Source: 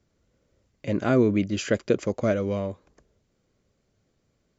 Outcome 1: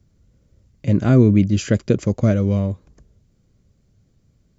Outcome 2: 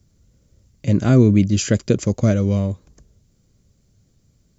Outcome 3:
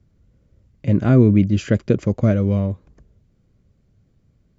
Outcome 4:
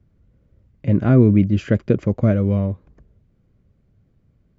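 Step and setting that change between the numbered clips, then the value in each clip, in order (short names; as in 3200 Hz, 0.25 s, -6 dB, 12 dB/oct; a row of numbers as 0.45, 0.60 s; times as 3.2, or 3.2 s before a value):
tone controls, treble: +5, +14, -4, -15 dB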